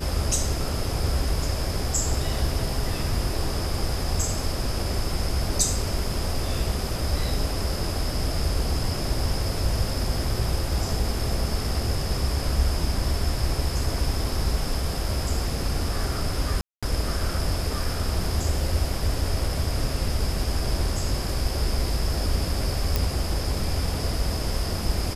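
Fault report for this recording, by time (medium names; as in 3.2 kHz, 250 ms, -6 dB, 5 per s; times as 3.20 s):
16.61–16.83 s: dropout 216 ms
22.96 s: pop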